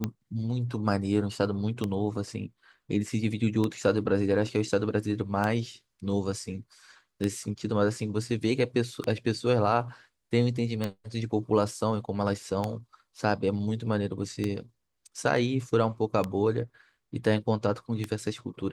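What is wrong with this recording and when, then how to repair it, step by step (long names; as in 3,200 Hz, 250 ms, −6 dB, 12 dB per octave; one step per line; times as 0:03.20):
scratch tick 33 1/3 rpm −15 dBFS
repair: click removal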